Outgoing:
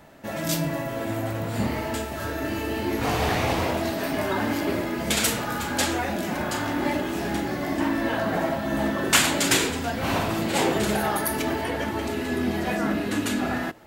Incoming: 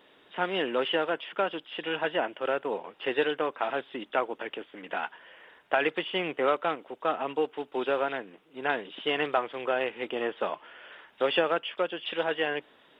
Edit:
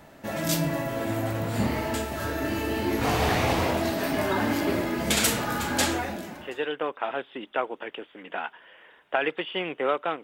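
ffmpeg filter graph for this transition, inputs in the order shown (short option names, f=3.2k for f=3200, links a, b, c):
-filter_complex "[0:a]apad=whole_dur=10.23,atrim=end=10.23,atrim=end=6.79,asetpts=PTS-STARTPTS[a];[1:a]atrim=start=2.46:end=6.82,asetpts=PTS-STARTPTS[b];[a][b]acrossfade=d=0.92:c1=qua:c2=qua"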